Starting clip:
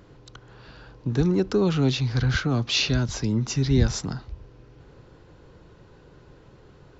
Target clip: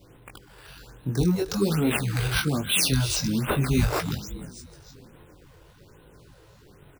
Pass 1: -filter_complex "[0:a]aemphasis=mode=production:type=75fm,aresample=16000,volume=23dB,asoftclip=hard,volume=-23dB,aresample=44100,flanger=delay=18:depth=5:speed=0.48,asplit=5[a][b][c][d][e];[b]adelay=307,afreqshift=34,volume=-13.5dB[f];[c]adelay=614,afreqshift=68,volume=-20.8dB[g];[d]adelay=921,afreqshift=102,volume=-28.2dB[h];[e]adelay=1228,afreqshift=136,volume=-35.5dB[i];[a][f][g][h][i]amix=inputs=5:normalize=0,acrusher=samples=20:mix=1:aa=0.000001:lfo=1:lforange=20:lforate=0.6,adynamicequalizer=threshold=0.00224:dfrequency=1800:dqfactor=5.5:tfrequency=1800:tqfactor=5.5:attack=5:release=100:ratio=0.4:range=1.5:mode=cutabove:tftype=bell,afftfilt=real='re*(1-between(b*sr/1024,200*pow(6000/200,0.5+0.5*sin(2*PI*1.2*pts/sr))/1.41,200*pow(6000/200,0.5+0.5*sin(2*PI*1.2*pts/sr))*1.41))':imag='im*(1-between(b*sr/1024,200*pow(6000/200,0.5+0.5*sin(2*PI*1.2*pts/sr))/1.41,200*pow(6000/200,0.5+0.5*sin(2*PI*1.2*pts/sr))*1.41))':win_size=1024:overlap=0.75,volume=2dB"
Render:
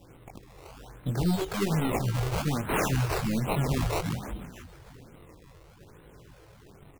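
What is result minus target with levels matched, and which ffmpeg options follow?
overloaded stage: distortion +18 dB; decimation with a swept rate: distortion +4 dB
-filter_complex "[0:a]aemphasis=mode=production:type=75fm,aresample=16000,volume=11dB,asoftclip=hard,volume=-11dB,aresample=44100,flanger=delay=18:depth=5:speed=0.48,asplit=5[a][b][c][d][e];[b]adelay=307,afreqshift=34,volume=-13.5dB[f];[c]adelay=614,afreqshift=68,volume=-20.8dB[g];[d]adelay=921,afreqshift=102,volume=-28.2dB[h];[e]adelay=1228,afreqshift=136,volume=-35.5dB[i];[a][f][g][h][i]amix=inputs=5:normalize=0,acrusher=samples=5:mix=1:aa=0.000001:lfo=1:lforange=5:lforate=0.6,adynamicequalizer=threshold=0.00224:dfrequency=1800:dqfactor=5.5:tfrequency=1800:tqfactor=5.5:attack=5:release=100:ratio=0.4:range=1.5:mode=cutabove:tftype=bell,afftfilt=real='re*(1-between(b*sr/1024,200*pow(6000/200,0.5+0.5*sin(2*PI*1.2*pts/sr))/1.41,200*pow(6000/200,0.5+0.5*sin(2*PI*1.2*pts/sr))*1.41))':imag='im*(1-between(b*sr/1024,200*pow(6000/200,0.5+0.5*sin(2*PI*1.2*pts/sr))/1.41,200*pow(6000/200,0.5+0.5*sin(2*PI*1.2*pts/sr))*1.41))':win_size=1024:overlap=0.75,volume=2dB"

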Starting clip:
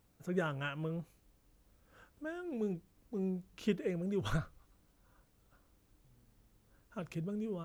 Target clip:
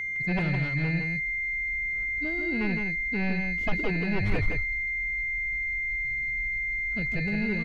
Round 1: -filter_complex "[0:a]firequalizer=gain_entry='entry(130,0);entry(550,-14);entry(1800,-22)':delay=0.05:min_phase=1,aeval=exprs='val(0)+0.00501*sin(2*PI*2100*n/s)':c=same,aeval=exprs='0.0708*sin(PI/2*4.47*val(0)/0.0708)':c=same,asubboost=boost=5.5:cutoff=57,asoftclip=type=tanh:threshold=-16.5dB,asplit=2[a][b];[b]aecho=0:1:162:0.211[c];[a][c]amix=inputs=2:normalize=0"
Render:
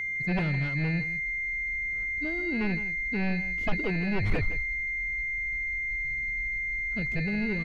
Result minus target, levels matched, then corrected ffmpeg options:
echo-to-direct -8 dB
-filter_complex "[0:a]firequalizer=gain_entry='entry(130,0);entry(550,-14);entry(1800,-22)':delay=0.05:min_phase=1,aeval=exprs='val(0)+0.00501*sin(2*PI*2100*n/s)':c=same,aeval=exprs='0.0708*sin(PI/2*4.47*val(0)/0.0708)':c=same,asubboost=boost=5.5:cutoff=57,asoftclip=type=tanh:threshold=-16.5dB,asplit=2[a][b];[b]aecho=0:1:162:0.531[c];[a][c]amix=inputs=2:normalize=0"

